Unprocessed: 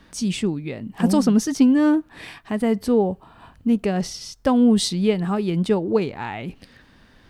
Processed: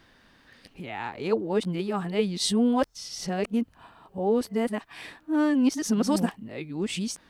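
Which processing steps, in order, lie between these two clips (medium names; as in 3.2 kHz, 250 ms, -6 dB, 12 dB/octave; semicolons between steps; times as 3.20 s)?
reverse the whole clip; bass shelf 240 Hz -8.5 dB; trim -3 dB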